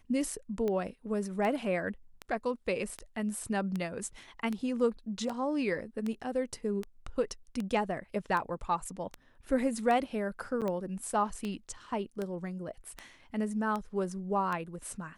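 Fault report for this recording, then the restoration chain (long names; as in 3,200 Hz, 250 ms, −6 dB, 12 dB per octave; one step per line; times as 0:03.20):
scratch tick 78 rpm −22 dBFS
0:10.61–0:10.62: drop-out 7.7 ms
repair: click removal
repair the gap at 0:10.61, 7.7 ms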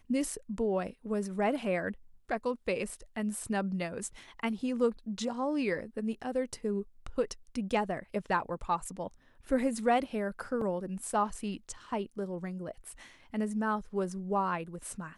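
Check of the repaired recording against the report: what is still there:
none of them is left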